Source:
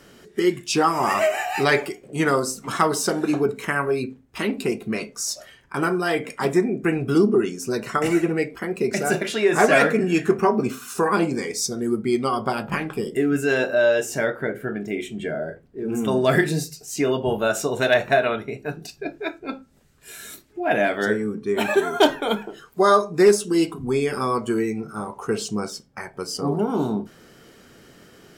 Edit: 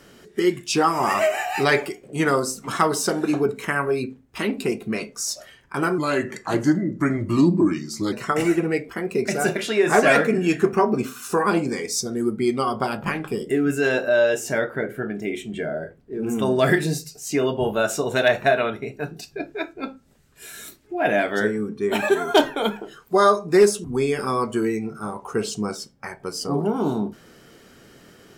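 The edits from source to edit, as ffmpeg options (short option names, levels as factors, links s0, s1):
-filter_complex "[0:a]asplit=4[s0][s1][s2][s3];[s0]atrim=end=5.984[s4];[s1]atrim=start=5.98:end=7.78,asetpts=PTS-STARTPTS,asetrate=37044,aresample=44100[s5];[s2]atrim=start=7.776:end=23.502[s6];[s3]atrim=start=23.778[s7];[s4][s5]acrossfade=d=0.004:c1=hsin:c2=hsin[s8];[s8][s6]acrossfade=d=0.004:c1=hsin:c2=hsin[s9];[s9][s7]acrossfade=d=0.004:c1=hsin:c2=hsin"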